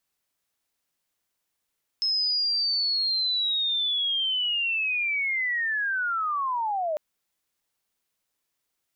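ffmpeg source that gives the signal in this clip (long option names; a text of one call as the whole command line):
ffmpeg -f lavfi -i "aevalsrc='pow(10,(-22-2.5*t/4.95)/20)*sin(2*PI*(5200*t-4610*t*t/(2*4.95)))':duration=4.95:sample_rate=44100" out.wav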